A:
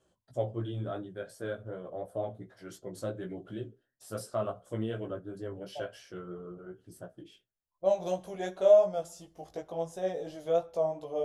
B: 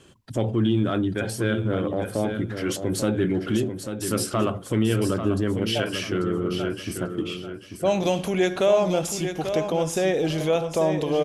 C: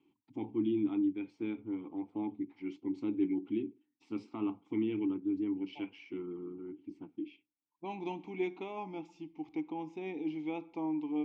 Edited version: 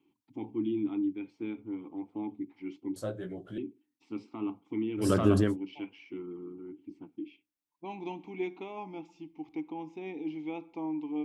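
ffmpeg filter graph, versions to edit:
-filter_complex "[2:a]asplit=3[a][b][c];[a]atrim=end=2.962[d];[0:a]atrim=start=2.958:end=3.582[e];[b]atrim=start=3.578:end=5.13[f];[1:a]atrim=start=4.97:end=5.57[g];[c]atrim=start=5.41[h];[d][e]acrossfade=d=0.004:c1=hsin:c2=hsin[i];[i][f]acrossfade=d=0.004:c1=hsin:c2=hsin[j];[j][g]acrossfade=d=0.16:c1=tri:c2=tri[k];[k][h]acrossfade=d=0.16:c1=tri:c2=tri"

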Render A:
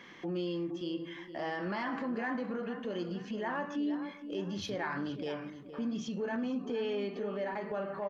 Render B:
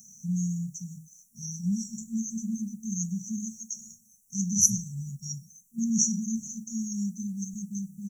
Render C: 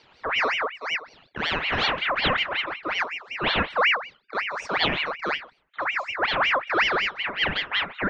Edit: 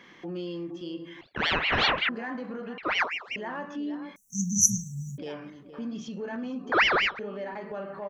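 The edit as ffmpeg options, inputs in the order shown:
-filter_complex "[2:a]asplit=3[a][b][c];[0:a]asplit=5[d][e][f][g][h];[d]atrim=end=1.212[i];[a]atrim=start=1.208:end=2.092[j];[e]atrim=start=2.088:end=2.782[k];[b]atrim=start=2.778:end=3.362[l];[f]atrim=start=3.358:end=4.162[m];[1:a]atrim=start=4.158:end=5.182[n];[g]atrim=start=5.178:end=6.722[o];[c]atrim=start=6.718:end=7.192[p];[h]atrim=start=7.188[q];[i][j]acrossfade=d=0.004:c1=hsin:c2=hsin[r];[r][k]acrossfade=d=0.004:c1=hsin:c2=hsin[s];[s][l]acrossfade=d=0.004:c1=hsin:c2=hsin[t];[t][m]acrossfade=d=0.004:c1=hsin:c2=hsin[u];[u][n]acrossfade=d=0.004:c1=hsin:c2=hsin[v];[v][o]acrossfade=d=0.004:c1=hsin:c2=hsin[w];[w][p]acrossfade=d=0.004:c1=hsin:c2=hsin[x];[x][q]acrossfade=d=0.004:c1=hsin:c2=hsin"

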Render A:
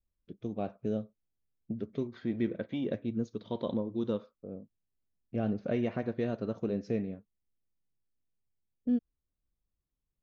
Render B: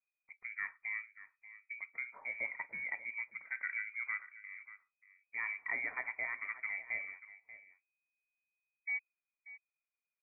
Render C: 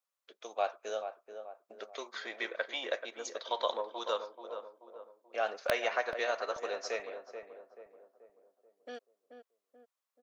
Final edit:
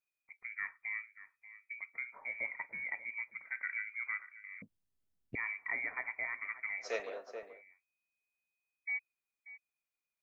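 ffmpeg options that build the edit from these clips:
-filter_complex "[1:a]asplit=3[a][b][c];[a]atrim=end=4.622[d];[0:a]atrim=start=4.618:end=5.352[e];[b]atrim=start=5.348:end=6.95[f];[2:a]atrim=start=6.79:end=7.63[g];[c]atrim=start=7.47[h];[d][e]acrossfade=d=0.004:c1=hsin:c2=hsin[i];[i][f]acrossfade=d=0.004:c1=hsin:c2=hsin[j];[j][g]acrossfade=d=0.16:c1=tri:c2=tri[k];[k][h]acrossfade=d=0.16:c1=tri:c2=tri"

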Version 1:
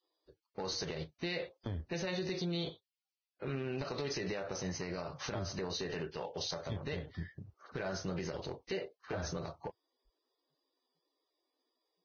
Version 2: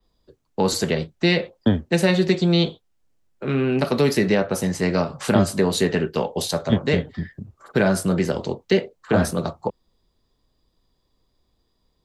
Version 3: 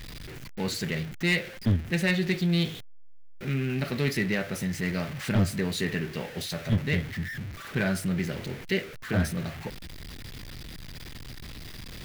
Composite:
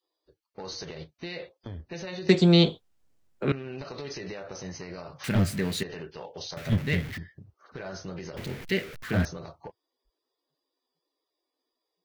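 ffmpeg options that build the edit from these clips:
-filter_complex "[2:a]asplit=3[a][b][c];[0:a]asplit=5[d][e][f][g][h];[d]atrim=end=2.292[i];[1:a]atrim=start=2.288:end=3.522[j];[e]atrim=start=3.518:end=5.242[k];[a]atrim=start=5.238:end=5.832[l];[f]atrim=start=5.828:end=6.572[m];[b]atrim=start=6.568:end=7.182[n];[g]atrim=start=7.178:end=8.372[o];[c]atrim=start=8.368:end=9.252[p];[h]atrim=start=9.248[q];[i][j]acrossfade=d=0.004:c1=hsin:c2=hsin[r];[r][k]acrossfade=d=0.004:c1=hsin:c2=hsin[s];[s][l]acrossfade=d=0.004:c1=hsin:c2=hsin[t];[t][m]acrossfade=d=0.004:c1=hsin:c2=hsin[u];[u][n]acrossfade=d=0.004:c1=hsin:c2=hsin[v];[v][o]acrossfade=d=0.004:c1=hsin:c2=hsin[w];[w][p]acrossfade=d=0.004:c1=hsin:c2=hsin[x];[x][q]acrossfade=d=0.004:c1=hsin:c2=hsin"

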